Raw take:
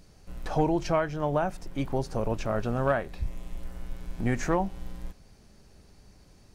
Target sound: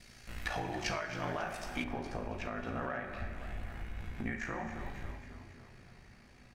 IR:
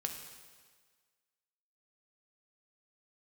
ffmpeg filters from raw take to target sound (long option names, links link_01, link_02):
-filter_complex "[0:a]aeval=exprs='val(0)*sin(2*PI*28*n/s)':channel_layout=same,acompressor=threshold=-32dB:ratio=6,equalizer=frequency=2000:width=0.88:gain=14,asplit=7[link_01][link_02][link_03][link_04][link_05][link_06][link_07];[link_02]adelay=272,afreqshift=38,volume=-13dB[link_08];[link_03]adelay=544,afreqshift=76,volume=-18.2dB[link_09];[link_04]adelay=816,afreqshift=114,volume=-23.4dB[link_10];[link_05]adelay=1088,afreqshift=152,volume=-28.6dB[link_11];[link_06]adelay=1360,afreqshift=190,volume=-33.8dB[link_12];[link_07]adelay=1632,afreqshift=228,volume=-39dB[link_13];[link_01][link_08][link_09][link_10][link_11][link_12][link_13]amix=inputs=7:normalize=0[link_14];[1:a]atrim=start_sample=2205,asetrate=66150,aresample=44100[link_15];[link_14][link_15]afir=irnorm=-1:irlink=0,alimiter=level_in=3.5dB:limit=-24dB:level=0:latency=1:release=380,volume=-3.5dB,asetnsamples=nb_out_samples=441:pad=0,asendcmd='1.84 highshelf g -5',highshelf=frequency=2700:gain=8.5,volume=2dB"